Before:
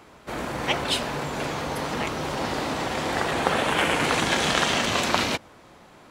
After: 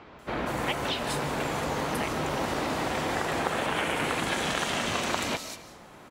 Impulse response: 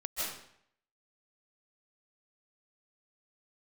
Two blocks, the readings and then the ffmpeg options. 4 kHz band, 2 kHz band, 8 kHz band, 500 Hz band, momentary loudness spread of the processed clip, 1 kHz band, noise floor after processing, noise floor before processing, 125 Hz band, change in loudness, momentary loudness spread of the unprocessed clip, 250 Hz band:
−6.0 dB, −4.5 dB, −4.5 dB, −3.5 dB, 6 LU, −3.5 dB, −50 dBFS, −51 dBFS, −3.0 dB, −4.5 dB, 8 LU, −3.0 dB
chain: -filter_complex "[0:a]highshelf=frequency=9900:gain=4,acompressor=threshold=-27dB:ratio=4,acrossover=split=4500[link_01][link_02];[link_02]adelay=190[link_03];[link_01][link_03]amix=inputs=2:normalize=0,asplit=2[link_04][link_05];[1:a]atrim=start_sample=2205[link_06];[link_05][link_06]afir=irnorm=-1:irlink=0,volume=-14.5dB[link_07];[link_04][link_07]amix=inputs=2:normalize=0"

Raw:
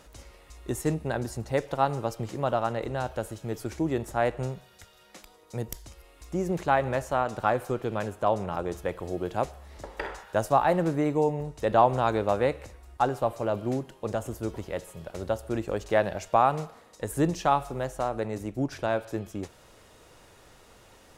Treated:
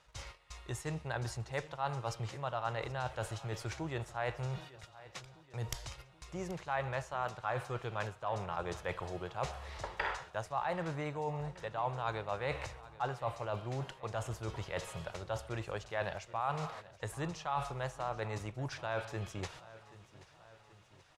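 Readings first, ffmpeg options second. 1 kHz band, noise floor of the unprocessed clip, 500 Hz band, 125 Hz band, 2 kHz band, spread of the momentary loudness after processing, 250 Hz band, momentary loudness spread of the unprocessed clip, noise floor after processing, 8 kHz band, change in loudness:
−10.5 dB, −56 dBFS, −12.5 dB, −6.5 dB, −5.0 dB, 12 LU, −14.5 dB, 14 LU, −61 dBFS, −6.0 dB, −11.0 dB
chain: -filter_complex "[0:a]lowpass=3200,agate=range=-16dB:threshold=-49dB:ratio=16:detection=peak,equalizer=frequency=125:width_type=o:width=1:gain=8,equalizer=frequency=250:width_type=o:width=1:gain=-10,equalizer=frequency=1000:width_type=o:width=1:gain=5,areverse,acompressor=threshold=-35dB:ratio=6,areverse,crystalizer=i=8:c=0,asplit=2[link_01][link_02];[link_02]aecho=0:1:780|1560|2340|3120|3900:0.119|0.0654|0.036|0.0198|0.0109[link_03];[link_01][link_03]amix=inputs=2:normalize=0,volume=-2dB"

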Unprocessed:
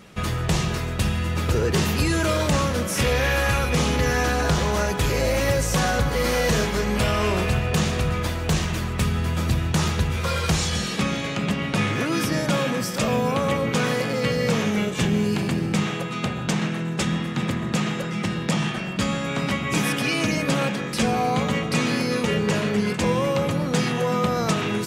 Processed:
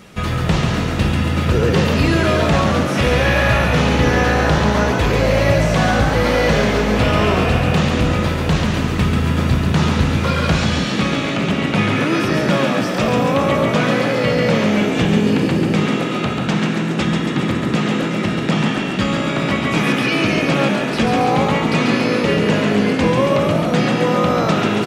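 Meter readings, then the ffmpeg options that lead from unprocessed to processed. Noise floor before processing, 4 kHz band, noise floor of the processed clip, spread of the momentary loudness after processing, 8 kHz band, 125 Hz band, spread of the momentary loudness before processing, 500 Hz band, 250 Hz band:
−29 dBFS, +4.5 dB, −21 dBFS, 4 LU, −2.0 dB, +6.0 dB, 4 LU, +7.0 dB, +7.5 dB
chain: -filter_complex "[0:a]asplit=9[link_01][link_02][link_03][link_04][link_05][link_06][link_07][link_08][link_09];[link_02]adelay=139,afreqshift=55,volume=-5dB[link_10];[link_03]adelay=278,afreqshift=110,volume=-9.7dB[link_11];[link_04]adelay=417,afreqshift=165,volume=-14.5dB[link_12];[link_05]adelay=556,afreqshift=220,volume=-19.2dB[link_13];[link_06]adelay=695,afreqshift=275,volume=-23.9dB[link_14];[link_07]adelay=834,afreqshift=330,volume=-28.7dB[link_15];[link_08]adelay=973,afreqshift=385,volume=-33.4dB[link_16];[link_09]adelay=1112,afreqshift=440,volume=-38.1dB[link_17];[link_01][link_10][link_11][link_12][link_13][link_14][link_15][link_16][link_17]amix=inputs=9:normalize=0,acrossover=split=4500[link_18][link_19];[link_19]acompressor=threshold=-46dB:ratio=4:attack=1:release=60[link_20];[link_18][link_20]amix=inputs=2:normalize=0,volume=5dB"

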